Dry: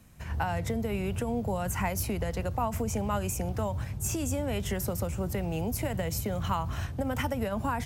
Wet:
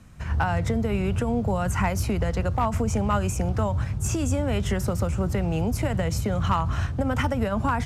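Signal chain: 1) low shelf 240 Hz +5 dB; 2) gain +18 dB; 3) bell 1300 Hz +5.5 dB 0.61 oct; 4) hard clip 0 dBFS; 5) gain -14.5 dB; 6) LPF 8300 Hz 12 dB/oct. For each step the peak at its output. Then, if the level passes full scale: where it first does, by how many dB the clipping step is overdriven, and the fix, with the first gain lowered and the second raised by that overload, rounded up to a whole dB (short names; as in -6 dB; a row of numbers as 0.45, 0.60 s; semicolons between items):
-15.0, +3.0, +4.5, 0.0, -14.5, -14.5 dBFS; step 2, 4.5 dB; step 2 +13 dB, step 5 -9.5 dB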